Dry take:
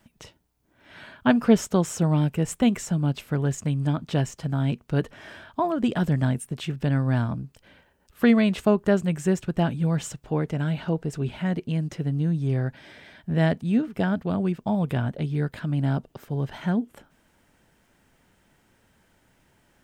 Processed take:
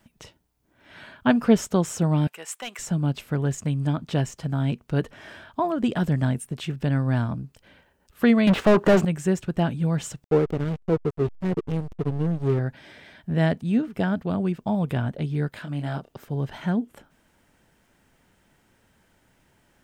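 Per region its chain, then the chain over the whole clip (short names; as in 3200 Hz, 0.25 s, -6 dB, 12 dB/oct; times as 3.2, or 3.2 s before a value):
2.27–2.79 HPF 970 Hz + overloaded stage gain 25.5 dB
8.47–9.05 switching dead time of 0.054 ms + overdrive pedal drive 35 dB, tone 1200 Hz, clips at -8 dBFS + upward expander, over -27 dBFS
10.24–12.59 bell 430 Hz +13.5 dB 0.5 oct + backlash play -21.5 dBFS
15.49–16.12 low shelf 360 Hz -9.5 dB + doubler 28 ms -5 dB
whole clip: dry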